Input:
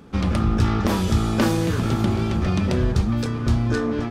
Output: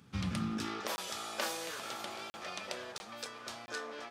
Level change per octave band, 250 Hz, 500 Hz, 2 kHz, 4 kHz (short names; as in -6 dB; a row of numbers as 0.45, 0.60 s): -20.5, -17.0, -10.0, -7.0 dB